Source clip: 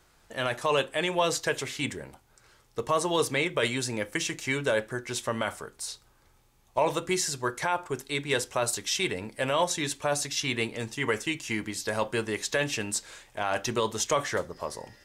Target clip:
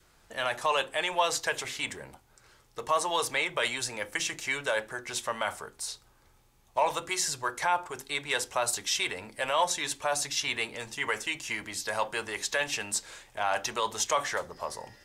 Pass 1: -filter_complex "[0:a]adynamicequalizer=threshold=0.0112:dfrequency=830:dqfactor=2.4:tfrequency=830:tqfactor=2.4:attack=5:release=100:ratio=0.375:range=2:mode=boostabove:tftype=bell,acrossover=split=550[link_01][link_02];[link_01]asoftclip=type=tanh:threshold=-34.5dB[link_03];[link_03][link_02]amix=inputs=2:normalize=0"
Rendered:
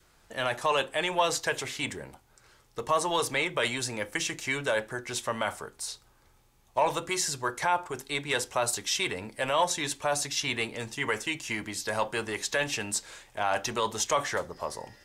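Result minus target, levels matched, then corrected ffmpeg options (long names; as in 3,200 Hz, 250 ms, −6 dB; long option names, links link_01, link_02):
soft clipping: distortion −6 dB
-filter_complex "[0:a]adynamicequalizer=threshold=0.0112:dfrequency=830:dqfactor=2.4:tfrequency=830:tqfactor=2.4:attack=5:release=100:ratio=0.375:range=2:mode=boostabove:tftype=bell,acrossover=split=550[link_01][link_02];[link_01]asoftclip=type=tanh:threshold=-45.5dB[link_03];[link_03][link_02]amix=inputs=2:normalize=0"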